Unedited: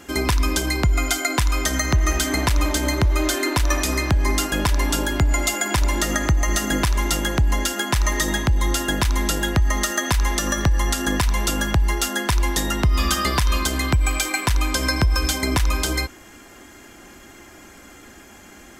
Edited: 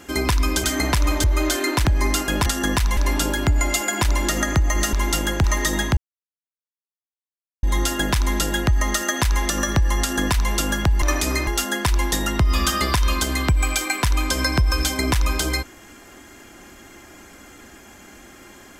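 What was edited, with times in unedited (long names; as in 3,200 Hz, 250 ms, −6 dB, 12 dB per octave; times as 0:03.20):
0:00.64–0:02.18: remove
0:02.78–0:03.03: remove
0:03.64–0:04.09: move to 0:11.91
0:06.66–0:06.91: remove
0:07.42–0:07.99: remove
0:08.52: splice in silence 1.66 s
0:10.89–0:11.40: duplicate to 0:04.70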